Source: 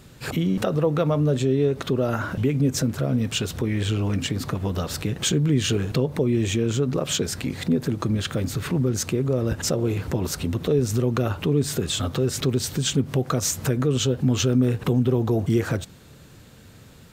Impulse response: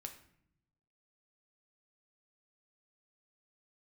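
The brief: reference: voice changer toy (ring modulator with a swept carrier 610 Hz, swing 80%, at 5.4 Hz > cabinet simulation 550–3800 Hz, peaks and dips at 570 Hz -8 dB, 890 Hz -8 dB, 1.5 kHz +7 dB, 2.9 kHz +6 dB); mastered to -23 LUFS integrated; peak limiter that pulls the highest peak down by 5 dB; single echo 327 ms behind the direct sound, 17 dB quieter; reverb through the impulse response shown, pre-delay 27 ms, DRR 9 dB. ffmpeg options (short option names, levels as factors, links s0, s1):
-filter_complex "[0:a]alimiter=limit=0.178:level=0:latency=1,aecho=1:1:327:0.141,asplit=2[s0][s1];[1:a]atrim=start_sample=2205,adelay=27[s2];[s1][s2]afir=irnorm=-1:irlink=0,volume=0.562[s3];[s0][s3]amix=inputs=2:normalize=0,aeval=exprs='val(0)*sin(2*PI*610*n/s+610*0.8/5.4*sin(2*PI*5.4*n/s))':c=same,highpass=550,equalizer=f=570:t=q:w=4:g=-8,equalizer=f=890:t=q:w=4:g=-8,equalizer=f=1500:t=q:w=4:g=7,equalizer=f=2900:t=q:w=4:g=6,lowpass=f=3800:w=0.5412,lowpass=f=3800:w=1.3066,volume=2.11"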